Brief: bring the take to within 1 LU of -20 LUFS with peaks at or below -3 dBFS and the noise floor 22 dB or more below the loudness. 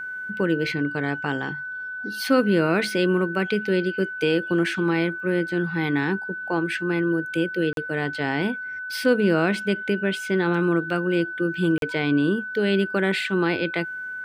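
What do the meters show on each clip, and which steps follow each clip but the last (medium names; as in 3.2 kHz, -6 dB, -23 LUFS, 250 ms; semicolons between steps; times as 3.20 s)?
dropouts 2; longest dropout 42 ms; steady tone 1.5 kHz; tone level -30 dBFS; loudness -23.5 LUFS; peak level -8.0 dBFS; loudness target -20.0 LUFS
-> interpolate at 7.73/11.78 s, 42 ms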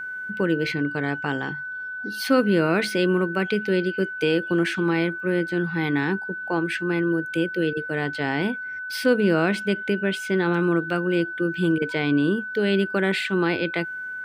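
dropouts 0; steady tone 1.5 kHz; tone level -30 dBFS
-> band-stop 1.5 kHz, Q 30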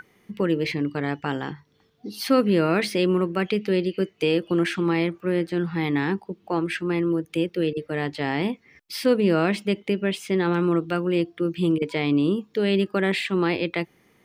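steady tone not found; loudness -24.0 LUFS; peak level -8.5 dBFS; loudness target -20.0 LUFS
-> trim +4 dB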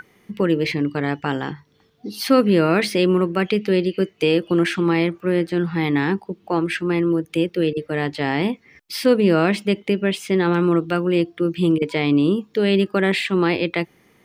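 loudness -20.0 LUFS; peak level -4.5 dBFS; noise floor -58 dBFS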